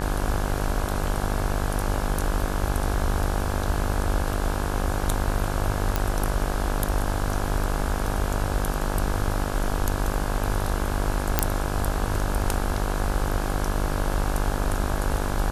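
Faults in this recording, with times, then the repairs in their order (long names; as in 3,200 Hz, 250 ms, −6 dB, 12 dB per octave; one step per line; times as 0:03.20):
mains buzz 50 Hz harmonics 34 −29 dBFS
0:05.96: click
0:11.39: click −2 dBFS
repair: click removal
hum removal 50 Hz, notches 34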